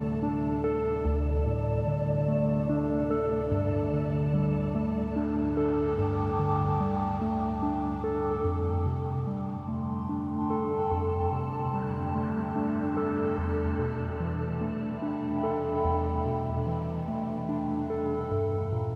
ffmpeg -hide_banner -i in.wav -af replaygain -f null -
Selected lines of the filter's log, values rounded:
track_gain = +12.2 dB
track_peak = 0.130